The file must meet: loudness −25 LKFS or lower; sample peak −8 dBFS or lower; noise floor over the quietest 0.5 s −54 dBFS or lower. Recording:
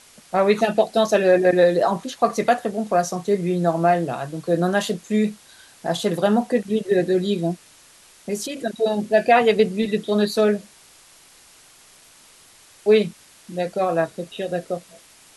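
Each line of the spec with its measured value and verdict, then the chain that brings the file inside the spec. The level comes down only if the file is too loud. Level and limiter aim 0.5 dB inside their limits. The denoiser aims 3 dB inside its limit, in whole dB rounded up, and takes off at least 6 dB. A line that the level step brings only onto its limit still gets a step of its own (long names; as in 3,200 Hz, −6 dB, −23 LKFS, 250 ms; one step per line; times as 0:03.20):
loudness −21.0 LKFS: out of spec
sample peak −4.5 dBFS: out of spec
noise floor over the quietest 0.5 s −51 dBFS: out of spec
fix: level −4.5 dB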